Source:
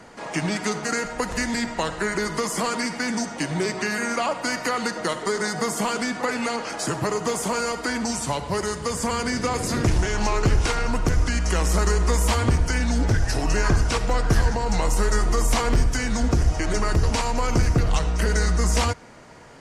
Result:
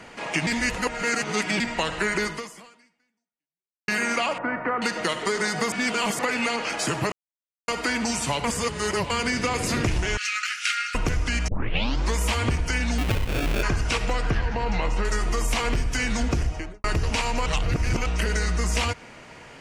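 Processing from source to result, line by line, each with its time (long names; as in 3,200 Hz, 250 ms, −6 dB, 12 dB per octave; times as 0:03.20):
0:00.47–0:01.60: reverse
0:02.24–0:03.88: fade out exponential
0:04.38–0:04.82: low-pass filter 1,600 Hz 24 dB per octave
0:05.72–0:06.19: reverse
0:07.12–0:07.68: silence
0:08.44–0:09.10: reverse
0:10.17–0:10.95: linear-phase brick-wall high-pass 1,200 Hz
0:11.48: tape start 0.67 s
0:12.98–0:13.63: sample-rate reduction 1,000 Hz
0:14.30–0:15.05: low-pass filter 3,500 Hz
0:16.36–0:16.84: fade out and dull
0:17.46–0:18.06: reverse
whole clip: parametric band 2,600 Hz +9.5 dB 0.86 octaves; downward compressor, threshold −20 dBFS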